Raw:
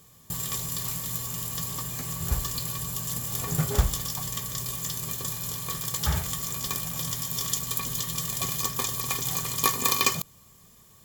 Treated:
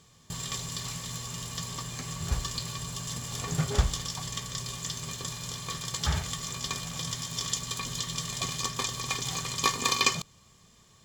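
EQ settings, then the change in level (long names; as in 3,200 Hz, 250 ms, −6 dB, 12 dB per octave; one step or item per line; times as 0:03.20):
high-frequency loss of the air 110 metres
high-shelf EQ 2,800 Hz +10 dB
−2.0 dB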